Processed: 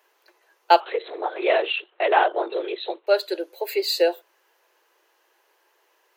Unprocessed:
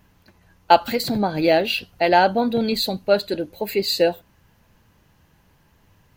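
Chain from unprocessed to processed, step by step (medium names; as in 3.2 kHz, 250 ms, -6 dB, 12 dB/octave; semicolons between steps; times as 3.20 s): 0.80–3.07 s: LPC vocoder at 8 kHz whisper; Chebyshev high-pass 350 Hz, order 6; trim -1 dB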